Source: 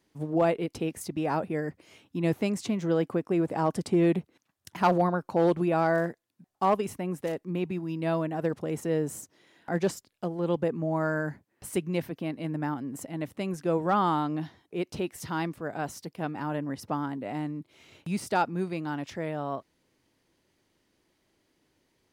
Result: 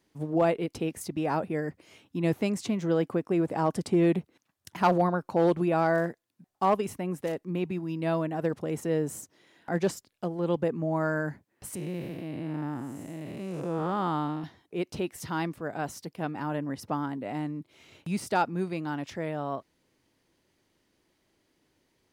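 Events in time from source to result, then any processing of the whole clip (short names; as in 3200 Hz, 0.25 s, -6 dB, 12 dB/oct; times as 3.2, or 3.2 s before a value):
11.75–14.44 time blur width 0.279 s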